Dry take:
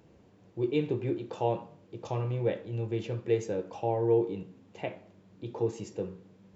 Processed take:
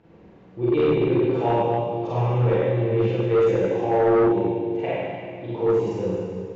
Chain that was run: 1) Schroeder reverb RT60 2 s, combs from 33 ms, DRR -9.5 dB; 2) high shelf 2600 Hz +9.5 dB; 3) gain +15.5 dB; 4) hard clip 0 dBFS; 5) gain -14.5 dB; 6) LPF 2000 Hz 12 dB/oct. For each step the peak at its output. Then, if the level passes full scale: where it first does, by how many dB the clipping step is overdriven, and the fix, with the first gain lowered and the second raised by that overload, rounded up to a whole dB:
-5.5, -5.5, +10.0, 0.0, -14.5, -14.0 dBFS; step 3, 10.0 dB; step 3 +5.5 dB, step 5 -4.5 dB

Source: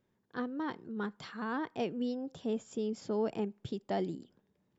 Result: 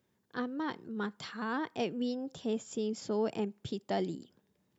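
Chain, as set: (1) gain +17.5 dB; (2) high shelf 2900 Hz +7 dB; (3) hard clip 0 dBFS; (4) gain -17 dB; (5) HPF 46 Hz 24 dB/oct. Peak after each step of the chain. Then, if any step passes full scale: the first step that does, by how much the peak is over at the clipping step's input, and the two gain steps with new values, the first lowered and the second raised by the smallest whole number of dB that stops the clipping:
-6.0, -4.5, -4.5, -21.5, -20.5 dBFS; no overload

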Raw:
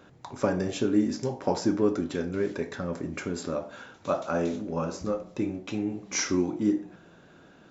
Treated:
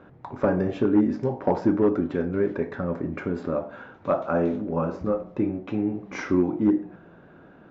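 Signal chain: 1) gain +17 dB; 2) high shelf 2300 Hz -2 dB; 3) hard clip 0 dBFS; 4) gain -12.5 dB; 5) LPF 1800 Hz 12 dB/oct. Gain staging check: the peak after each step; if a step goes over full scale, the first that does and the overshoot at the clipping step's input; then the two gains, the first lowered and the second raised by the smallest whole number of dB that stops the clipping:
+7.5, +7.5, 0.0, -12.5, -12.0 dBFS; step 1, 7.5 dB; step 1 +9 dB, step 4 -4.5 dB

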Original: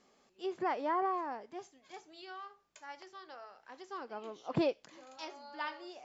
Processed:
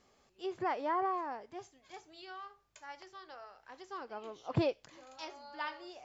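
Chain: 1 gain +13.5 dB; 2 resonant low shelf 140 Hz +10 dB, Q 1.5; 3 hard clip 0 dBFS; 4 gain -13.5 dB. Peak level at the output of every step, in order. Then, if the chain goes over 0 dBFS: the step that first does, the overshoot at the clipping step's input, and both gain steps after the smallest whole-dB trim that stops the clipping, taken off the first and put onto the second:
-6.5, -4.5, -4.5, -18.0 dBFS; no overload

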